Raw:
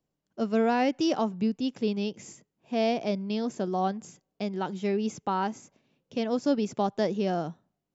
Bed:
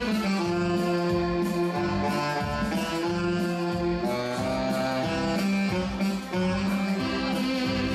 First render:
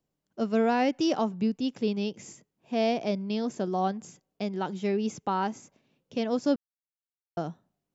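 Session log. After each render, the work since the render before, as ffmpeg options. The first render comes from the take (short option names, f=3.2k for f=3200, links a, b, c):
-filter_complex "[0:a]asplit=3[a][b][c];[a]atrim=end=6.56,asetpts=PTS-STARTPTS,afade=t=out:st=6.556:d=0.004:c=hsin[d];[b]atrim=start=6.56:end=7.37,asetpts=PTS-STARTPTS,volume=0[e];[c]atrim=start=7.37,asetpts=PTS-STARTPTS,afade=t=in:d=0.004:c=hsin[f];[d][e][f]concat=n=3:v=0:a=1"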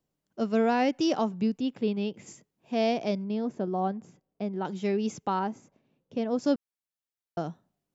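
-filter_complex "[0:a]asplit=3[a][b][c];[a]afade=t=out:st=1.6:d=0.02[d];[b]equalizer=f=6.1k:t=o:w=0.77:g=-13.5,afade=t=in:st=1.6:d=0.02,afade=t=out:st=2.26:d=0.02[e];[c]afade=t=in:st=2.26:d=0.02[f];[d][e][f]amix=inputs=3:normalize=0,asettb=1/sr,asplit=3[g][h][i];[g]atrim=end=3.244[j];[h]atrim=start=3.24:end=4.65,asetpts=PTS-STARTPTS,afade=t=in:d=0.004:c=qsin,afade=t=out:st=1.406:d=0.004:c=qsin,lowpass=f=1.1k:p=1[k];[i]atrim=start=4.646[l];[j][k]acrossfade=d=0.004:c1=hsin:c2=qsin[m];[m][l]acrossfade=d=0.004:c1=qsin:c2=hsin,asettb=1/sr,asplit=3[n][o][p];[n]atrim=end=5.394[q];[o]atrim=start=5.39:end=6.39,asetpts=PTS-STARTPTS,afade=t=in:d=0.004:c=qsin,afade=t=out:st=0.996:d=0.004:c=qsin,highshelf=f=2k:g=-11[r];[p]atrim=start=6.386[s];[q][r]acrossfade=d=0.004:c1=hsin:c2=qsin[t];[t][s]acrossfade=d=0.004:c1=qsin:c2=hsin"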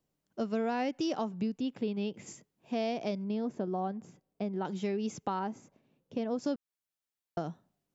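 -af "acompressor=threshold=-31dB:ratio=3"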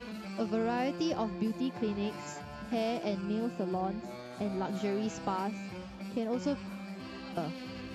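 -filter_complex "[1:a]volume=-16dB[a];[0:a][a]amix=inputs=2:normalize=0"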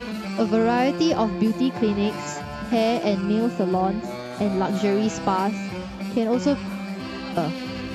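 -af "volume=11.5dB"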